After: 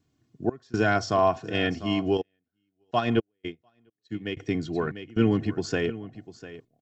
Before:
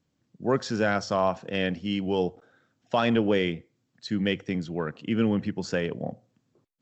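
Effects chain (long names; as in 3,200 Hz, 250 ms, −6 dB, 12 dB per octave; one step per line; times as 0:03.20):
parametric band 140 Hz +8.5 dB 1.2 octaves
comb filter 2.8 ms, depth 67%
gate pattern "xx.xxxxxx.x" 61 BPM −24 dB
single-tap delay 698 ms −15.5 dB
0:02.17–0:04.37: expander for the loud parts 2.5 to 1, over −40 dBFS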